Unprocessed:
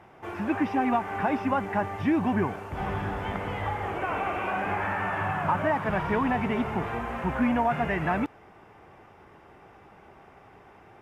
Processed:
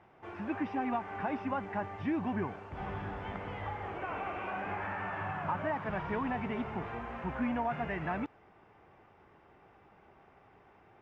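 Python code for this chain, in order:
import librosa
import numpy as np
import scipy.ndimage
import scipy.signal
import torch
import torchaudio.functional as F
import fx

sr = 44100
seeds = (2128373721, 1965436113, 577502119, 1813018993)

y = scipy.signal.sosfilt(scipy.signal.butter(2, 4800.0, 'lowpass', fs=sr, output='sos'), x)
y = y * 10.0 ** (-8.5 / 20.0)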